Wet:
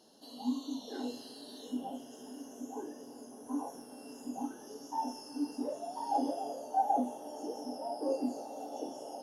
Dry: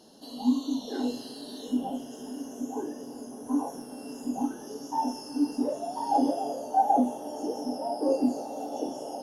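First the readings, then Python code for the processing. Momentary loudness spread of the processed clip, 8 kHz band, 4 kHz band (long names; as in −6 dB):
14 LU, −6.0 dB, −6.0 dB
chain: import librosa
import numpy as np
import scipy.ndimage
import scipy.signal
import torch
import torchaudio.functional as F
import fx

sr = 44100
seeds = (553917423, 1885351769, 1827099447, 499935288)

y = fx.low_shelf(x, sr, hz=220.0, db=-8.0)
y = F.gain(torch.from_numpy(y), -6.0).numpy()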